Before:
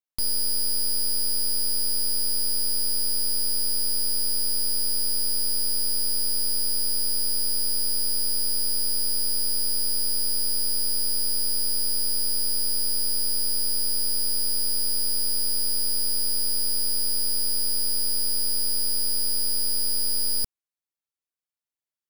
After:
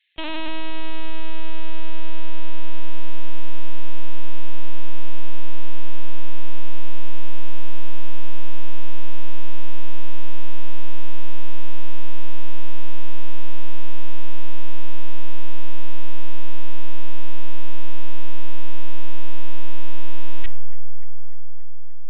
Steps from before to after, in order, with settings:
Butterworth high-pass 1,700 Hz 96 dB per octave
sine wavefolder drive 15 dB, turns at −17.5 dBFS
bucket-brigade delay 292 ms, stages 4,096, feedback 79%, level −9 dB
on a send at −13 dB: convolution reverb RT60 2.2 s, pre-delay 4 ms
on the sum: linear-prediction vocoder at 8 kHz pitch kept
level +14.5 dB

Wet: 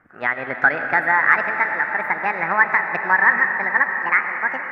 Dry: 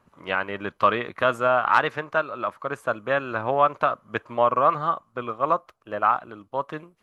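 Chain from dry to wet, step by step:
gliding playback speed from 127% → 171%
high shelf with overshoot 2,600 Hz −12 dB, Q 3
in parallel at −1 dB: downward compressor, threshold −24 dBFS, peak gain reduction 15.5 dB
on the sum: convolution reverb RT60 5.1 s, pre-delay 55 ms, DRR 5 dB
level −3 dB

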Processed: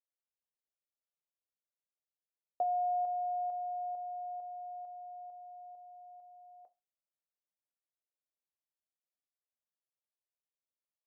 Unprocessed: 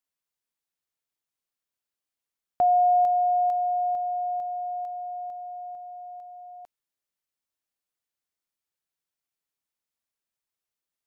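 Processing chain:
resonant band-pass 570 Hz, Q 2.8
convolution reverb RT60 0.25 s, pre-delay 6 ms, DRR 8 dB
level −6 dB

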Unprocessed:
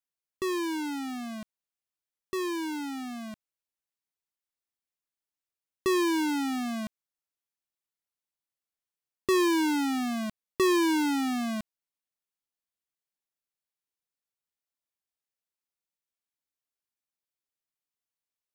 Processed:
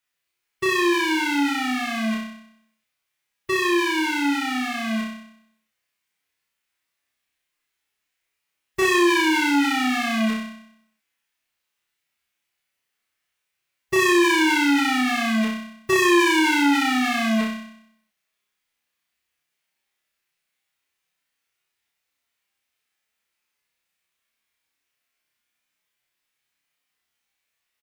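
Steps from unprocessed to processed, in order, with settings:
parametric band 2,200 Hz +10.5 dB 1.5 octaves
in parallel at +2.5 dB: downward compressor 12 to 1, threshold −30 dBFS, peak gain reduction 13.5 dB
on the sum: hard clipping −13.5 dBFS, distortion −22 dB
phase-vocoder stretch with locked phases 1.5×
double-tracking delay 14 ms −11 dB
on a send: flutter between parallel walls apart 5.4 metres, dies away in 0.72 s
on the sum: saturating transformer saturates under 870 Hz

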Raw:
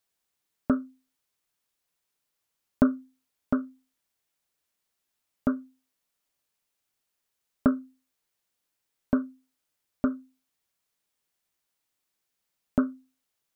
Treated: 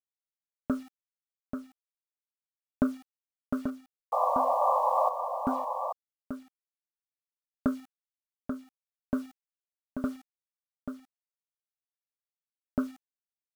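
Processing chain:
sound drawn into the spectrogram noise, 0:04.12–0:05.09, 490–1,200 Hz −20 dBFS
bit-depth reduction 8 bits, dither none
single-tap delay 836 ms −7 dB
level −5.5 dB

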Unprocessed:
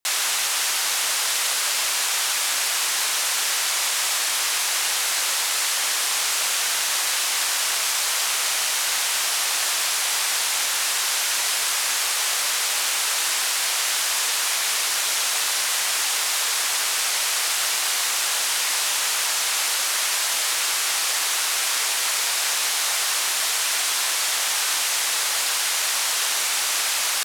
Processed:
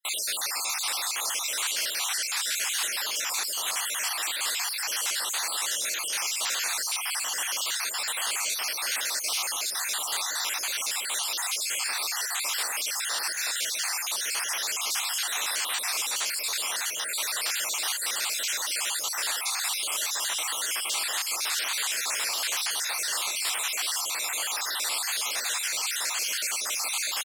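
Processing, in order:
time-frequency cells dropped at random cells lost 51%
slap from a distant wall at 130 metres, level −13 dB
level −3.5 dB

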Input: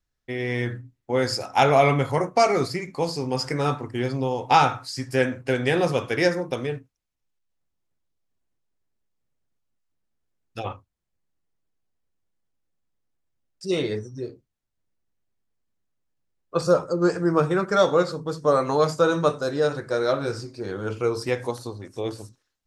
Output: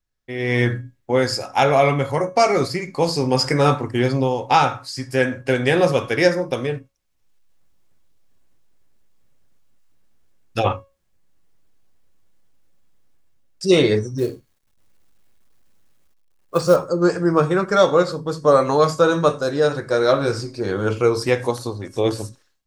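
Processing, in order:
automatic gain control gain up to 16.5 dB
0:14.18–0:16.76: log-companded quantiser 6 bits
tuned comb filter 550 Hz, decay 0.31 s, harmonics all, mix 60%
level +5.5 dB

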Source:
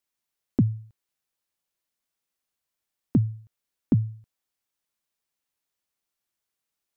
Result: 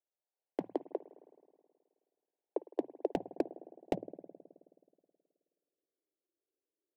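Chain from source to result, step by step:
adaptive Wiener filter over 41 samples
elliptic high-pass filter 190 Hz, stop band 60 dB
delay with pitch and tempo change per echo 289 ms, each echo +4 semitones, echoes 2, each echo −6 dB
dynamic equaliser 730 Hz, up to +6 dB, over −48 dBFS, Q 1.9
band-pass filter sweep 1,100 Hz → 320 Hz, 0:02.18–0:05.60
spring reverb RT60 2 s, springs 53 ms, chirp 50 ms, DRR 15.5 dB
hard clipping −33.5 dBFS, distortion −9 dB
phaser with its sweep stopped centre 530 Hz, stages 4
level +15.5 dB

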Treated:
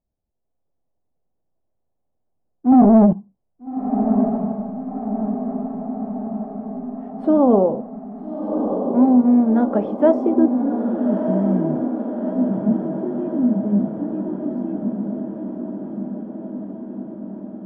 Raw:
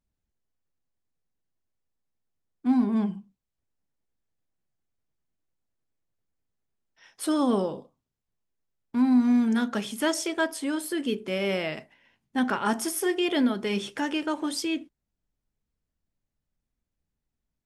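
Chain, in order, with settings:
0:02.72–0:03.13: leveller curve on the samples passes 3
0:09.06–0:09.51: transient designer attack −11 dB, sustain −7 dB
low-pass filter sweep 680 Hz → 180 Hz, 0:10.12–0:10.72
automatic gain control gain up to 7.5 dB
feedback delay with all-pass diffusion 1,285 ms, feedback 65%, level −6 dB

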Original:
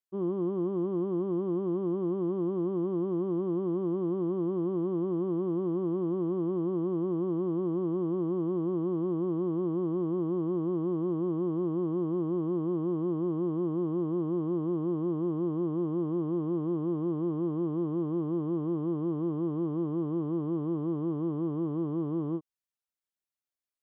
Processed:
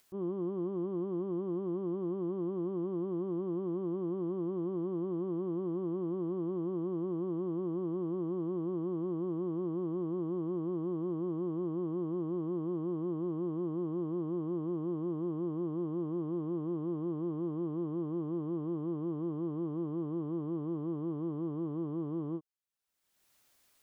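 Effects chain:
upward compression, threshold −42 dBFS
level −5 dB

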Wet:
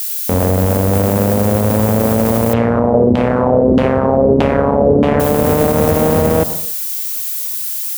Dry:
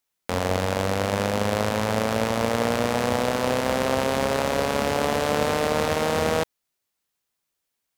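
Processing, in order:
low-pass filter 4,100 Hz
tilt shelving filter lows +9 dB, about 830 Hz
background noise violet −31 dBFS
0:02.53–0:05.20: auto-filter low-pass saw down 1.6 Hz 290–3,200 Hz
convolution reverb, pre-delay 83 ms, DRR 16 dB
boost into a limiter +11 dB
level −1 dB

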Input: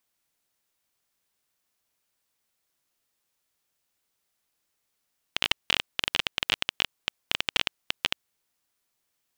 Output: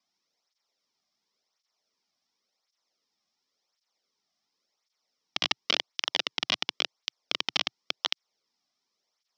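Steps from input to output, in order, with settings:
loudspeaker in its box 110–5,400 Hz, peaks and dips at 130 Hz −9 dB, 320 Hz −5 dB, 1,600 Hz −8 dB, 2,700 Hz −6 dB, 5,400 Hz +10 dB
through-zero flanger with one copy inverted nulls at 0.92 Hz, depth 2.3 ms
level +4 dB

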